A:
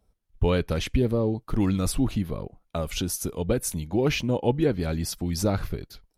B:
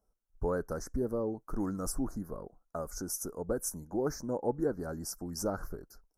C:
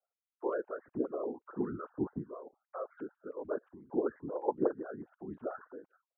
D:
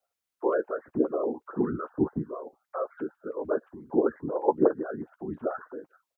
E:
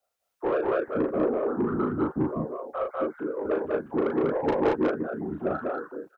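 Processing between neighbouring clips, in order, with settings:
elliptic band-stop filter 1,500–5,600 Hz, stop band 60 dB; parametric band 96 Hz −13 dB 2.1 octaves; level −5 dB
three sine waves on the formant tracks; random phases in short frames; level −3 dB
double-tracking delay 13 ms −12.5 dB; level +8 dB
soft clipping −22.5 dBFS, distortion −9 dB; on a send: loudspeakers that aren't time-aligned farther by 13 metres −4 dB, 67 metres −2 dB, 78 metres −2 dB; on the sum: level +1.5 dB

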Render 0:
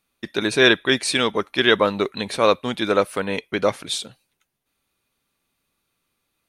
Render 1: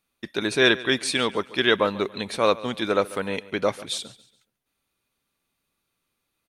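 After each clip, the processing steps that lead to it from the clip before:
repeating echo 141 ms, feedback 36%, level −19 dB
level −3.5 dB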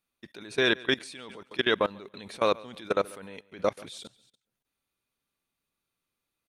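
output level in coarse steps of 21 dB
level −1.5 dB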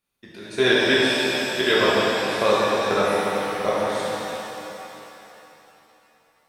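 reverb with rising layers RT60 3.2 s, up +7 semitones, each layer −8 dB, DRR −8 dB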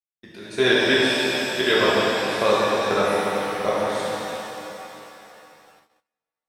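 noise gate −53 dBFS, range −29 dB

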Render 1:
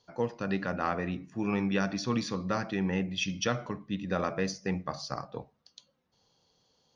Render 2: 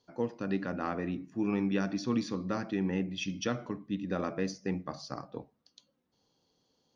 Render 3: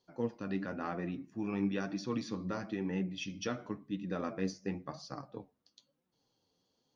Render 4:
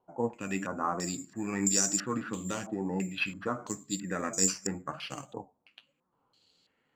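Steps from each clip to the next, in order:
parametric band 290 Hz +9 dB 0.96 octaves; level −5.5 dB
flanger 0.99 Hz, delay 5.1 ms, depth 6.6 ms, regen +43%
bad sample-rate conversion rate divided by 6×, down none, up zero stuff; low-pass on a step sequencer 3 Hz 840–5,700 Hz; level +1.5 dB

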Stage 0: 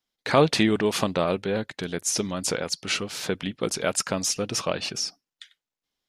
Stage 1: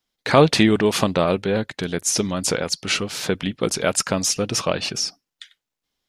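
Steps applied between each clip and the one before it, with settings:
low-shelf EQ 130 Hz +4 dB
level +4.5 dB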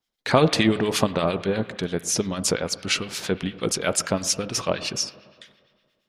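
spring reverb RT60 1.9 s, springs 35/54 ms, chirp 65 ms, DRR 13 dB
two-band tremolo in antiphase 8.7 Hz, crossover 1,300 Hz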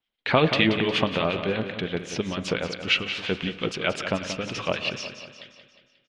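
low-pass with resonance 2,900 Hz, resonance Q 2.5
on a send: repeating echo 179 ms, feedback 51%, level −10 dB
on the sum: level −3 dB

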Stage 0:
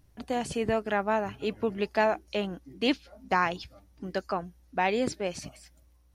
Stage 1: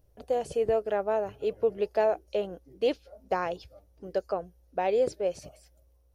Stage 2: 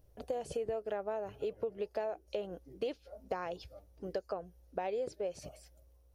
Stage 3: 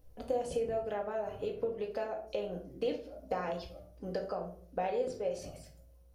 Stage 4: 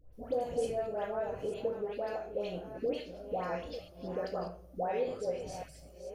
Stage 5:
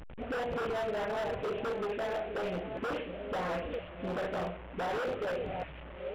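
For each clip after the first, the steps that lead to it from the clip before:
octave-band graphic EQ 125/250/500/1,000/2,000/4,000/8,000 Hz −3/−11/+11/−6/−8/−5/−5 dB; level −1 dB
downward compressor 6 to 1, threshold −34 dBFS, peak gain reduction 13 dB
rectangular room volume 520 cubic metres, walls furnished, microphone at 2 metres
delay that plays each chunk backwards 472 ms, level −10.5 dB; all-pass dispersion highs, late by 131 ms, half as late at 1,300 Hz
linear delta modulator 16 kbit/s, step −45 dBFS; wave folding −33.5 dBFS; level +5 dB

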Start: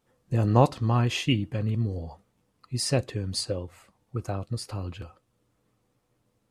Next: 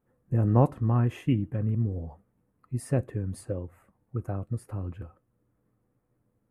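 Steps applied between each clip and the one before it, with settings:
drawn EQ curve 260 Hz 0 dB, 910 Hz −6 dB, 1,700 Hz −5 dB, 4,600 Hz −28 dB, 11,000 Hz −7 dB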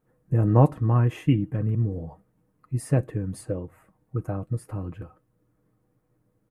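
comb filter 6.4 ms, depth 42%
level +3 dB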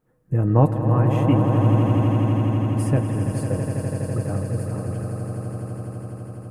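echo that builds up and dies away 83 ms, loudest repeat 8, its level −9 dB
level +1 dB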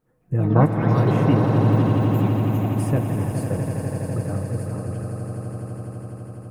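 delay with pitch and tempo change per echo 165 ms, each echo +6 semitones, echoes 2, each echo −6 dB
level −1 dB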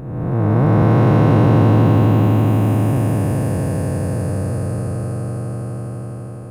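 spectrum smeared in time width 616 ms
level +7 dB

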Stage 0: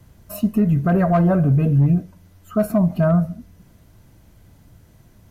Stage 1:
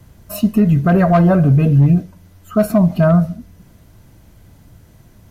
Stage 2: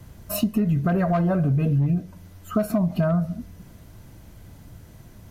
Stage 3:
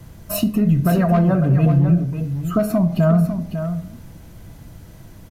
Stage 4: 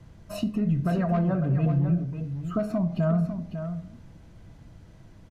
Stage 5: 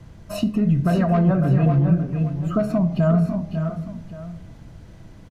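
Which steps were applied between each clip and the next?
dynamic equaliser 4,100 Hz, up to +6 dB, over −46 dBFS, Q 0.73; level +4.5 dB
downward compressor 6 to 1, threshold −19 dBFS, peak gain reduction 10.5 dB
single-tap delay 549 ms −9 dB; convolution reverb RT60 0.60 s, pre-delay 6 ms, DRR 11 dB; level +3.5 dB
high-frequency loss of the air 75 metres; level −8.5 dB
single-tap delay 575 ms −8.5 dB; level +6 dB

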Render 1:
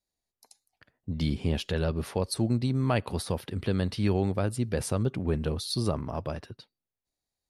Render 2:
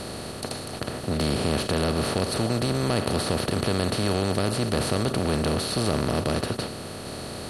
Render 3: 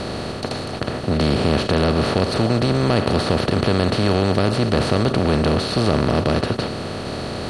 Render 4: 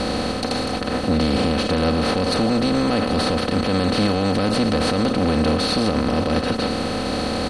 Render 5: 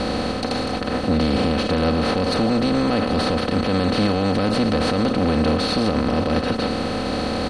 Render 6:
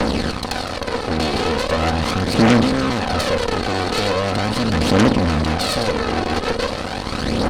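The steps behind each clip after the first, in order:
compressor on every frequency bin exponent 0.2; in parallel at −10 dB: hard clipping −19 dBFS, distortion −8 dB; on the sum: level −5.5 dB
reversed playback; upward compression, threshold −28 dBFS; reversed playback; high-frequency loss of the air 92 metres; level +7 dB
comb filter 3.9 ms, depth 65%; brickwall limiter −14 dBFS, peak gain reduction 10 dB; level +3 dB
high-shelf EQ 7,600 Hz −9 dB
phase shifter 0.4 Hz, delay 2.8 ms, feedback 62%; harmonic generator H 6 −10 dB, 8 −8 dB, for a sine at −3 dBFS; level −2 dB

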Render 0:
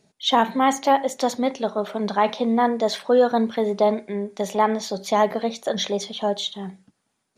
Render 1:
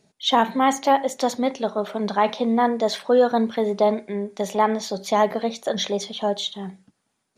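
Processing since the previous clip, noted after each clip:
no processing that can be heard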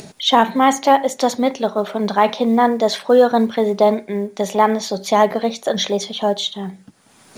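upward compression, threshold −28 dBFS
log-companded quantiser 8 bits
level +5 dB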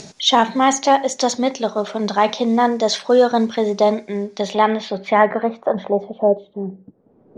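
low-pass filter sweep 6,100 Hz → 450 Hz, 0:04.17–0:06.47
level −1.5 dB

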